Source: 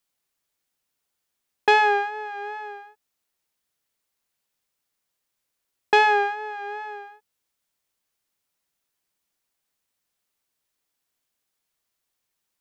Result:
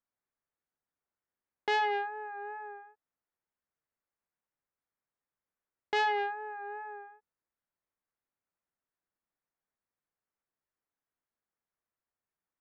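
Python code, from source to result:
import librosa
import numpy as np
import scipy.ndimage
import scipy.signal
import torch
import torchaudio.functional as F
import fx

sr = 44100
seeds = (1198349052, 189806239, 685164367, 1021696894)

y = scipy.signal.sosfilt(scipy.signal.butter(4, 1900.0, 'lowpass', fs=sr, output='sos'), x)
y = fx.transformer_sat(y, sr, knee_hz=1900.0)
y = F.gain(torch.from_numpy(y), -7.5).numpy()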